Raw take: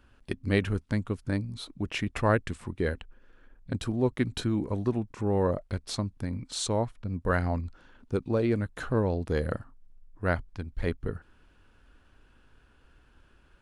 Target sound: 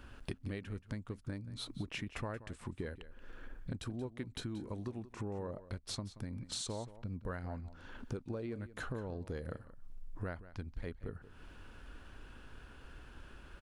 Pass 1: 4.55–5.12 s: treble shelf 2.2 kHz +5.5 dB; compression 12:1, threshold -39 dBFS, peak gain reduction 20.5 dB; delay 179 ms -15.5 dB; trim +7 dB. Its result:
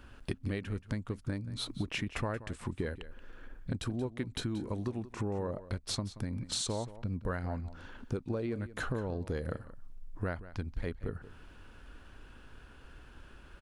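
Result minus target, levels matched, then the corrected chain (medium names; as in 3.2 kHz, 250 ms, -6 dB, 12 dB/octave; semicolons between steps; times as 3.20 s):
compression: peak gain reduction -6 dB
4.55–5.12 s: treble shelf 2.2 kHz +5.5 dB; compression 12:1, threshold -45.5 dBFS, peak gain reduction 26.5 dB; delay 179 ms -15.5 dB; trim +7 dB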